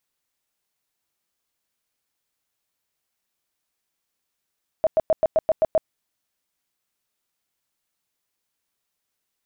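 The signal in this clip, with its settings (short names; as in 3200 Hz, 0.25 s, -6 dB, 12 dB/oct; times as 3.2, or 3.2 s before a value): tone bursts 637 Hz, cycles 18, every 0.13 s, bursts 8, -14 dBFS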